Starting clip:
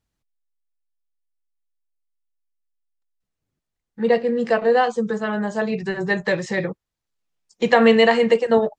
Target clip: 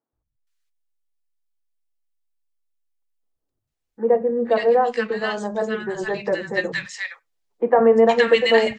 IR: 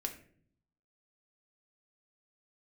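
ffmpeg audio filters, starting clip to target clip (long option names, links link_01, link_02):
-filter_complex "[0:a]equalizer=frequency=180:width_type=o:width=0.41:gain=-9,acrossover=split=200|1300[link_01][link_02][link_03];[link_01]adelay=130[link_04];[link_03]adelay=470[link_05];[link_04][link_02][link_05]amix=inputs=3:normalize=0,asplit=2[link_06][link_07];[1:a]atrim=start_sample=2205,atrim=end_sample=4410[link_08];[link_07][link_08]afir=irnorm=-1:irlink=0,volume=-16.5dB[link_09];[link_06][link_09]amix=inputs=2:normalize=0"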